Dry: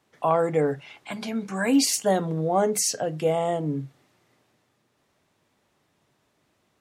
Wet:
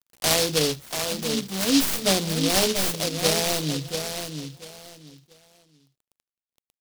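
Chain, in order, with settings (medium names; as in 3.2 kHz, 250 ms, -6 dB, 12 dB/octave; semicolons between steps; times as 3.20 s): tracing distortion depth 0.094 ms; mains buzz 60 Hz, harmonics 27, -60 dBFS -4 dB/octave; bit crusher 8-bit; feedback delay 687 ms, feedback 23%, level -7 dB; delay time shaken by noise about 4.1 kHz, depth 0.26 ms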